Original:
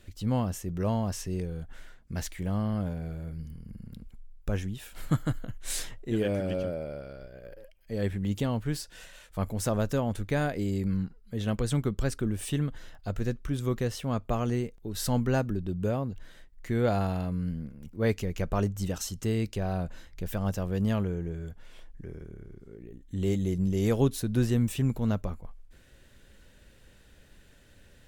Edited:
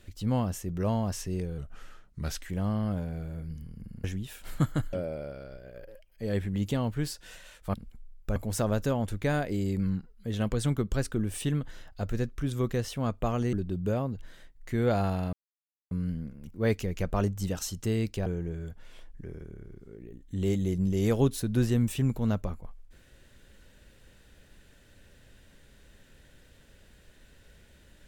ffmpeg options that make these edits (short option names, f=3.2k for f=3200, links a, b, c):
-filter_complex "[0:a]asplit=10[a][b][c][d][e][f][g][h][i][j];[a]atrim=end=1.584[k];[b]atrim=start=1.58:end=2.38,asetpts=PTS-STARTPTS,asetrate=38808,aresample=44100[l];[c]atrim=start=2.376:end=3.932[m];[d]atrim=start=4.548:end=5.442[n];[e]atrim=start=6.618:end=9.432[o];[f]atrim=start=3.928:end=4.552[p];[g]atrim=start=9.428:end=14.602[q];[h]atrim=start=15.498:end=17.3,asetpts=PTS-STARTPTS,afade=t=out:st=1.798:d=0.004:c=hsin,apad=pad_dur=0.58[r];[i]atrim=start=17.3:end=19.652,asetpts=PTS-STARTPTS,afade=t=in:d=0.004:c=hsin[s];[j]atrim=start=21.058[t];[k][l]acrossfade=d=0.004:c1=hsin:c2=hsin[u];[u][m]acrossfade=d=0.004:c1=hsin:c2=hsin[v];[v][n]acrossfade=d=0.004:c1=hsin:c2=hsin[w];[w][o]acrossfade=d=0.004:c1=hsin:c2=hsin[x];[x][p]acrossfade=d=0.004:c1=hsin:c2=hsin[y];[y][q]acrossfade=d=0.004:c1=hsin:c2=hsin[z];[r][s]concat=n=2:v=0:a=1[aa];[z][aa]acrossfade=d=0.004:c1=hsin:c2=hsin[ab];[ab][t]acrossfade=d=0.004:c1=hsin:c2=hsin"